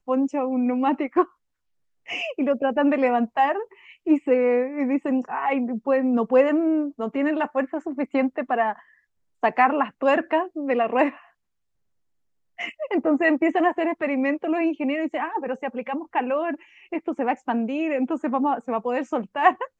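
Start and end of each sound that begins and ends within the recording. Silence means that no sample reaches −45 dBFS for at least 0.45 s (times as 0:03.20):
0:02.06–0:08.81
0:09.43–0:11.27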